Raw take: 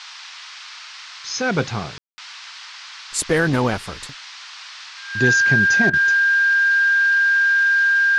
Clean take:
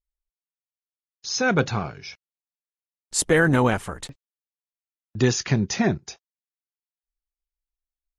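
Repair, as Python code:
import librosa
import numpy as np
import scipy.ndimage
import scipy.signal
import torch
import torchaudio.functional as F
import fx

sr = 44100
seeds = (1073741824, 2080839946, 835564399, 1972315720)

y = fx.notch(x, sr, hz=1600.0, q=30.0)
y = fx.fix_ambience(y, sr, seeds[0], print_start_s=4.16, print_end_s=4.66, start_s=1.98, end_s=2.18)
y = fx.fix_interpolate(y, sr, at_s=(5.9,), length_ms=32.0)
y = fx.noise_reduce(y, sr, print_start_s=4.16, print_end_s=4.66, reduce_db=30.0)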